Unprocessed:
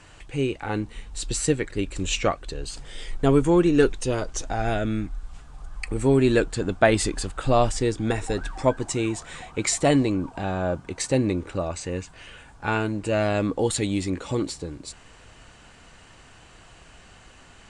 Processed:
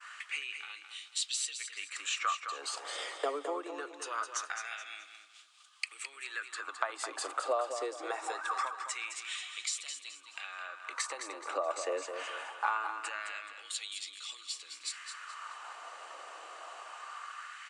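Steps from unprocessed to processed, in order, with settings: Chebyshev high-pass 280 Hz, order 8; expander -50 dBFS; bell 1200 Hz +12 dB 0.29 oct; compressor 16:1, threshold -34 dBFS, peak gain reduction 23 dB; LFO high-pass sine 0.23 Hz 580–3400 Hz; feedback echo 0.213 s, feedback 34%, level -8 dB; gain +1 dB

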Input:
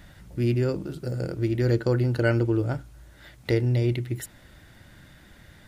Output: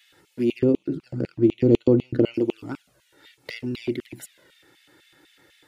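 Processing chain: 0.59–2.34 RIAA curve playback; LFO high-pass square 4 Hz 270–2700 Hz; envelope flanger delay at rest 2.4 ms, full sweep at -18 dBFS

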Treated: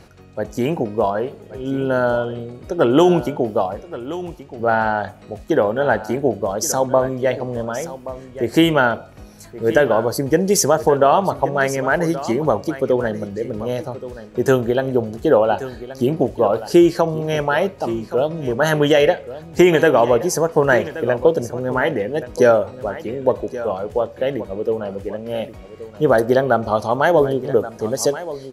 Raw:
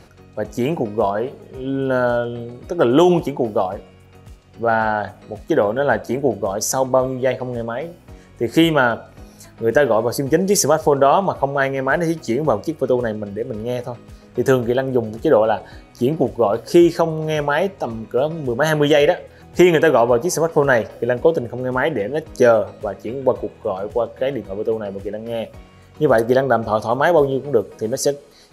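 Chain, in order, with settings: echo 1.126 s -14.5 dB

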